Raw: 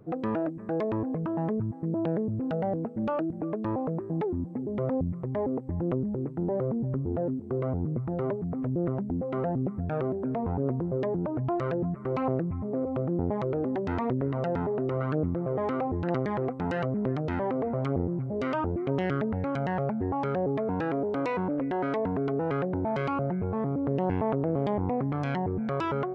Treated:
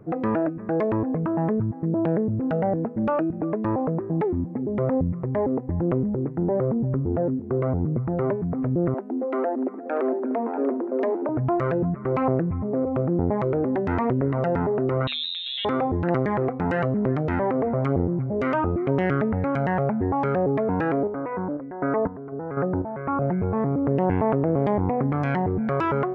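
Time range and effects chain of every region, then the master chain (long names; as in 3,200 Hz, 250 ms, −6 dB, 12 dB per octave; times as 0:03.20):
0:08.94–0:11.29: Butterworth high-pass 230 Hz 96 dB per octave + single-tap delay 641 ms −10 dB
0:15.07–0:15.65: hum removal 272 Hz, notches 13 + voice inversion scrambler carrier 3,900 Hz
0:21.07–0:23.22: low-pass filter 1,700 Hz 24 dB per octave + sample-and-hold tremolo 4 Hz, depth 80%
whole clip: high shelf with overshoot 2,700 Hz −6.5 dB, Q 1.5; hum removal 250 Hz, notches 35; level +5.5 dB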